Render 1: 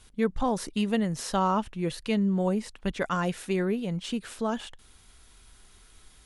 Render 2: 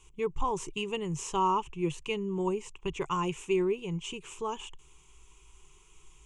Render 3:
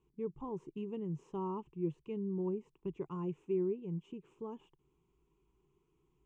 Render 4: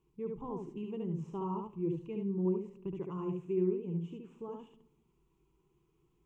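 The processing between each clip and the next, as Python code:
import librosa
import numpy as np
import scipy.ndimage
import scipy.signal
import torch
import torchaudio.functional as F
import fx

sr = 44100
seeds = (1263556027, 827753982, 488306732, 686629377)

y1 = fx.ripple_eq(x, sr, per_octave=0.71, db=18)
y1 = F.gain(torch.from_numpy(y1), -6.5).numpy()
y2 = fx.bandpass_q(y1, sr, hz=240.0, q=1.6)
y2 = F.gain(torch.from_numpy(y2), -1.0).numpy()
y3 = y2 + 10.0 ** (-3.5 / 20.0) * np.pad(y2, (int(71 * sr / 1000.0), 0))[:len(y2)]
y3 = fx.room_shoebox(y3, sr, seeds[0], volume_m3=2600.0, walls='furnished', distance_m=0.7)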